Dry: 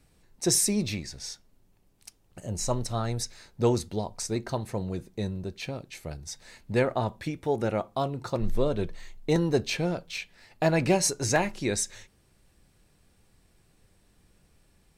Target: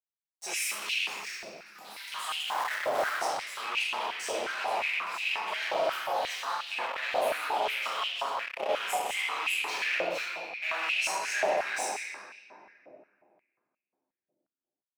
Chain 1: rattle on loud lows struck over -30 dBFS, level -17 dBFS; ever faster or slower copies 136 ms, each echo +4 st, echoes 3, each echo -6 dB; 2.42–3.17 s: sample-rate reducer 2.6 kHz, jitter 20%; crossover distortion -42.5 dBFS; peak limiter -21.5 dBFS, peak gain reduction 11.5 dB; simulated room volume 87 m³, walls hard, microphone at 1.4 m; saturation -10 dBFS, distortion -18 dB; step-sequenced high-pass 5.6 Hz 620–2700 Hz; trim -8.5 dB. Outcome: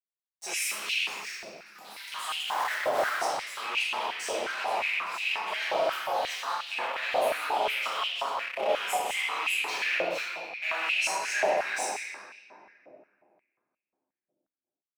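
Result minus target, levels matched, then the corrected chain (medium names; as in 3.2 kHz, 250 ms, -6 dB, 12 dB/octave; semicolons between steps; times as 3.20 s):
saturation: distortion -6 dB
rattle on loud lows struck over -30 dBFS, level -17 dBFS; ever faster or slower copies 136 ms, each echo +4 st, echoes 3, each echo -6 dB; 2.42–3.17 s: sample-rate reducer 2.6 kHz, jitter 20%; crossover distortion -42.5 dBFS; peak limiter -21.5 dBFS, peak gain reduction 11.5 dB; simulated room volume 87 m³, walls hard, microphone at 1.4 m; saturation -16 dBFS, distortion -11 dB; step-sequenced high-pass 5.6 Hz 620–2700 Hz; trim -8.5 dB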